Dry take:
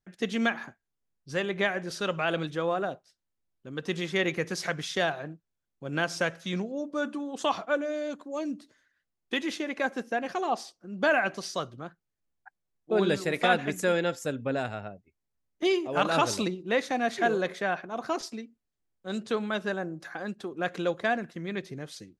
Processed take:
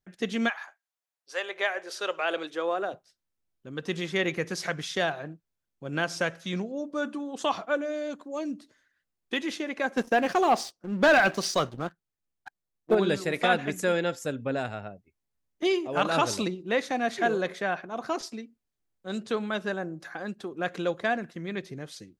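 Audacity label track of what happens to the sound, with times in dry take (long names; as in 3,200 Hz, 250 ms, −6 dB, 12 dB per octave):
0.480000	2.920000	high-pass filter 770 Hz → 260 Hz 24 dB per octave
9.970000	12.950000	leveller curve on the samples passes 2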